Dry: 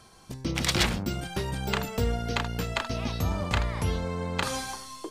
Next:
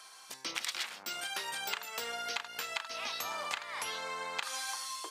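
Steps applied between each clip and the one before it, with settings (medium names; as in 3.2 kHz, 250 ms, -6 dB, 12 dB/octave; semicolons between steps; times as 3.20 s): high-pass 1.1 kHz 12 dB/octave; compression 10:1, threshold -38 dBFS, peak gain reduction 17.5 dB; trim +4.5 dB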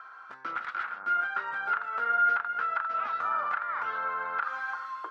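saturation -28.5 dBFS, distortion -15 dB; resonant low-pass 1.4 kHz, resonance Q 10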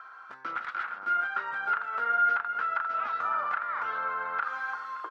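delay 572 ms -16.5 dB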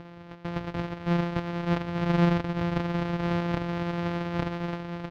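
sorted samples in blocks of 256 samples; distance through air 270 m; trim +3 dB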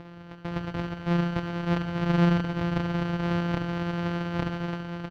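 feedback delay 69 ms, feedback 58%, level -11 dB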